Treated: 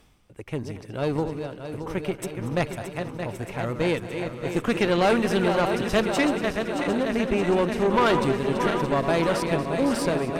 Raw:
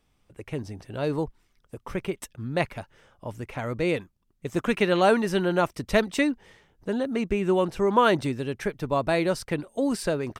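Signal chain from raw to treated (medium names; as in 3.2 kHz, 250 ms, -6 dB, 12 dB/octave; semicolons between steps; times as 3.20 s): backward echo that repeats 311 ms, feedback 82%, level -8 dB; reverse; upward compressor, threshold -37 dBFS; reverse; valve stage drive 18 dB, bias 0.55; two-band feedback delay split 370 Hz, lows 161 ms, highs 233 ms, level -15 dB; trim +3.5 dB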